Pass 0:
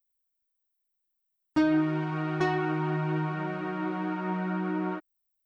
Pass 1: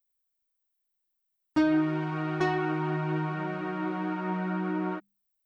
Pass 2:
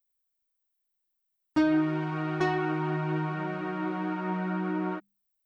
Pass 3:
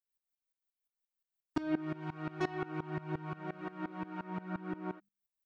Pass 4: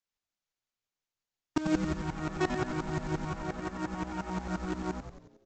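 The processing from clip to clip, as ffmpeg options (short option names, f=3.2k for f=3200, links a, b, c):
-af "bandreject=f=50:t=h:w=6,bandreject=f=100:t=h:w=6,bandreject=f=150:t=h:w=6,bandreject=f=200:t=h:w=6"
-af anull
-af "aeval=exprs='val(0)*pow(10,-20*if(lt(mod(-5.7*n/s,1),2*abs(-5.7)/1000),1-mod(-5.7*n/s,1)/(2*abs(-5.7)/1000),(mod(-5.7*n/s,1)-2*abs(-5.7)/1000)/(1-2*abs(-5.7)/1000))/20)':c=same,volume=-3.5dB"
-filter_complex "[0:a]aresample=16000,acrusher=bits=4:mode=log:mix=0:aa=0.000001,aresample=44100,asplit=8[a][b][c][d][e][f][g][h];[b]adelay=91,afreqshift=-120,volume=-7dB[i];[c]adelay=182,afreqshift=-240,volume=-12.2dB[j];[d]adelay=273,afreqshift=-360,volume=-17.4dB[k];[e]adelay=364,afreqshift=-480,volume=-22.6dB[l];[f]adelay=455,afreqshift=-600,volume=-27.8dB[m];[g]adelay=546,afreqshift=-720,volume=-33dB[n];[h]adelay=637,afreqshift=-840,volume=-38.2dB[o];[a][i][j][k][l][m][n][o]amix=inputs=8:normalize=0,volume=4.5dB"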